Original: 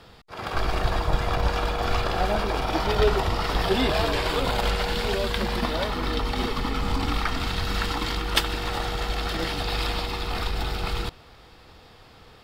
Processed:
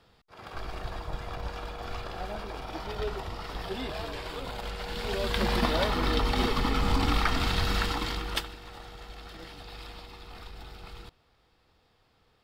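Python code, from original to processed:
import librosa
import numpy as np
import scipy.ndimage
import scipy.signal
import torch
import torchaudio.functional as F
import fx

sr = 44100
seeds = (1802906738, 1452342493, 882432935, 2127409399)

y = fx.gain(x, sr, db=fx.line((4.73, -12.5), (5.48, 0.0), (7.64, 0.0), (8.33, -7.0), (8.56, -17.0)))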